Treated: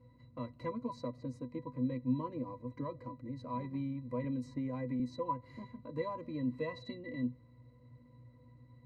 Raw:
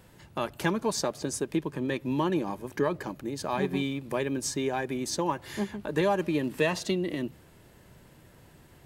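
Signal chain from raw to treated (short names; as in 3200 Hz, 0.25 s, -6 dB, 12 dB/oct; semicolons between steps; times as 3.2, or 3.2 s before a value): hum 60 Hz, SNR 24 dB; octave resonator B, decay 0.12 s; 4.24–5 three-band squash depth 100%; gain +1.5 dB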